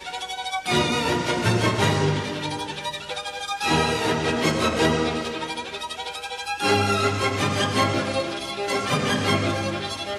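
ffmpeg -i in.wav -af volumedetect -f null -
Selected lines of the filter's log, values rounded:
mean_volume: -24.0 dB
max_volume: -8.0 dB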